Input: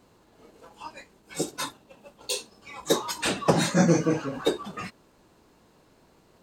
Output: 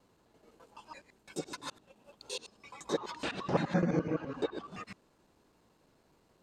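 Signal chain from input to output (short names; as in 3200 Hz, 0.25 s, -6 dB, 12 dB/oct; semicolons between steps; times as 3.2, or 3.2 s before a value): local time reversal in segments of 85 ms; treble ducked by the level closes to 2500 Hz, closed at -21 dBFS; gain -8.5 dB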